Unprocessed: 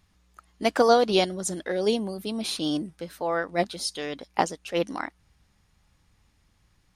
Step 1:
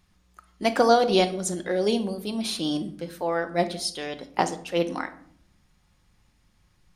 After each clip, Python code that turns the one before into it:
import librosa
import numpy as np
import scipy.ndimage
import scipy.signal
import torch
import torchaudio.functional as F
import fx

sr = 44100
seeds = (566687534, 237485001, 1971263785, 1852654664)

y = fx.room_shoebox(x, sr, seeds[0], volume_m3=980.0, walls='furnished', distance_m=0.94)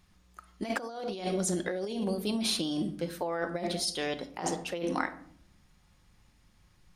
y = fx.over_compress(x, sr, threshold_db=-29.0, ratio=-1.0)
y = y * librosa.db_to_amplitude(-3.5)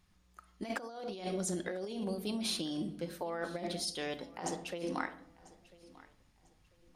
y = fx.echo_feedback(x, sr, ms=995, feedback_pct=29, wet_db=-21)
y = y * librosa.db_to_amplitude(-5.5)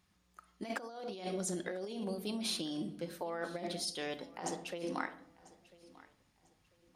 y = fx.highpass(x, sr, hz=120.0, slope=6)
y = y * librosa.db_to_amplitude(-1.0)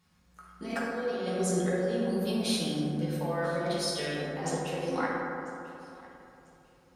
y = fx.rev_fdn(x, sr, rt60_s=2.8, lf_ratio=1.0, hf_ratio=0.3, size_ms=37.0, drr_db=-7.5)